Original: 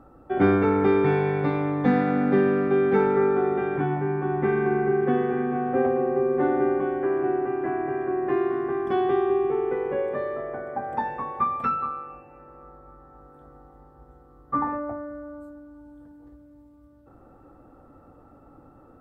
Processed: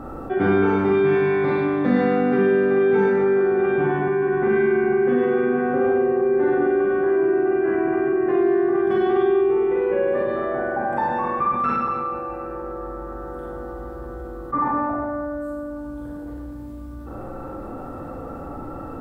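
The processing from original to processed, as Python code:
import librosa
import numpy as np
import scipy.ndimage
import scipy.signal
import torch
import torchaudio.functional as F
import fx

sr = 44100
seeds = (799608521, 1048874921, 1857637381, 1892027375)

y = fx.rev_schroeder(x, sr, rt60_s=0.9, comb_ms=33, drr_db=-4.5)
y = fx.env_flatten(y, sr, amount_pct=50)
y = y * librosa.db_to_amplitude(-4.5)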